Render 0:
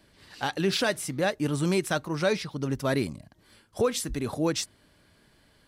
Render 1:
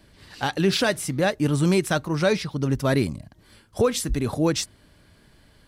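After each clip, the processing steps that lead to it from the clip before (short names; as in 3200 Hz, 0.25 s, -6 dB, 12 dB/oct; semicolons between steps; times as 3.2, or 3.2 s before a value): low shelf 140 Hz +7.5 dB; gain +3.5 dB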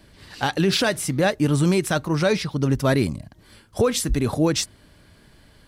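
limiter -13 dBFS, peak gain reduction 3.5 dB; gain +3 dB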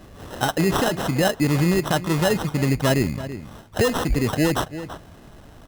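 sample-rate reducer 2300 Hz, jitter 0%; outdoor echo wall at 57 m, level -17 dB; compressor 1.5:1, threshold -36 dBFS, peak gain reduction 7.5 dB; gain +7 dB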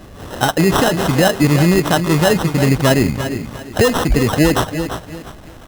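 lo-fi delay 0.35 s, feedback 35%, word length 7-bit, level -10 dB; gain +6.5 dB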